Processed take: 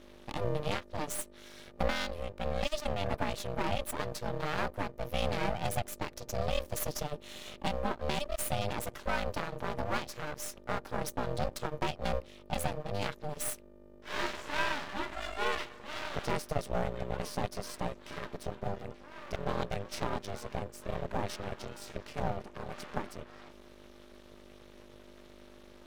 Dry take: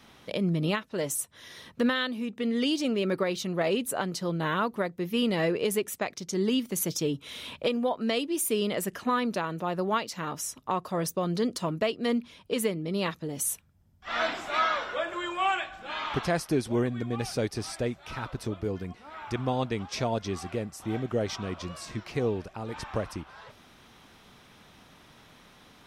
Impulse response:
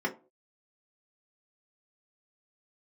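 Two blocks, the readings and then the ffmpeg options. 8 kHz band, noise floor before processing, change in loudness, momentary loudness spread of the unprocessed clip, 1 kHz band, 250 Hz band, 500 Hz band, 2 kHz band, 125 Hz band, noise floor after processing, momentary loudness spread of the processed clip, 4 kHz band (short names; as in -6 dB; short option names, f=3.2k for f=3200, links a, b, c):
-7.0 dB, -56 dBFS, -6.5 dB, 9 LU, -4.0 dB, -11.5 dB, -6.5 dB, -4.5 dB, -4.5 dB, -54 dBFS, 17 LU, -6.0 dB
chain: -af "aeval=exprs='val(0)+0.00398*(sin(2*PI*50*n/s)+sin(2*PI*2*50*n/s)/2+sin(2*PI*3*50*n/s)/3+sin(2*PI*4*50*n/s)/4+sin(2*PI*5*50*n/s)/5)':c=same,aeval=exprs='val(0)*sin(2*PI*300*n/s)':c=same,aeval=exprs='max(val(0),0)':c=same,volume=1dB"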